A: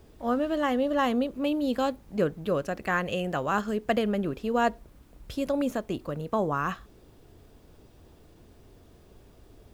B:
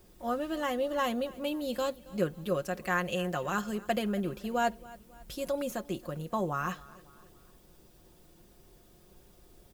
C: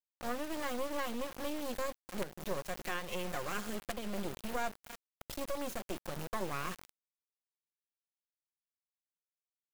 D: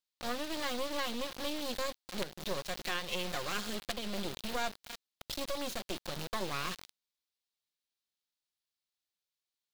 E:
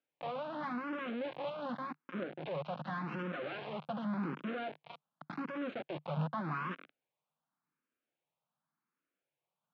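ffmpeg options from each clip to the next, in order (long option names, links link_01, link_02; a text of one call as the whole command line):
ffmpeg -i in.wav -af "highshelf=frequency=5400:gain=11.5,aecho=1:1:5.6:0.54,aecho=1:1:274|548|822:0.0891|0.0419|0.0197,volume=-6dB" out.wav
ffmpeg -i in.wav -af "acrusher=bits=4:dc=4:mix=0:aa=0.000001,alimiter=limit=-20.5dB:level=0:latency=1:release=289,acompressor=threshold=-40dB:ratio=1.5,volume=2dB" out.wav
ffmpeg -i in.wav -af "equalizer=frequency=4000:width_type=o:width=1.1:gain=11" out.wav
ffmpeg -i in.wav -filter_complex "[0:a]aeval=exprs='(tanh(89.1*val(0)+0.55)-tanh(0.55))/89.1':channel_layout=same,highpass=frequency=150:width=0.5412,highpass=frequency=150:width=1.3066,equalizer=frequency=150:width_type=q:width=4:gain=10,equalizer=frequency=270:width_type=q:width=4:gain=3,equalizer=frequency=400:width_type=q:width=4:gain=-5,equalizer=frequency=1900:width_type=q:width=4:gain=-9,lowpass=frequency=2000:width=0.5412,lowpass=frequency=2000:width=1.3066,asplit=2[link_01][link_02];[link_02]afreqshift=0.87[link_03];[link_01][link_03]amix=inputs=2:normalize=1,volume=17dB" out.wav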